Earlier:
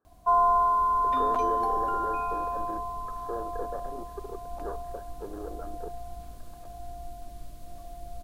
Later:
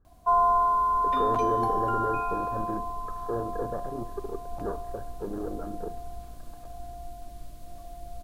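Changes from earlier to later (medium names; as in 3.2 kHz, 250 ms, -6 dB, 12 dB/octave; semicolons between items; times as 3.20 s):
speech: remove high-pass 370 Hz 12 dB/octave; reverb: on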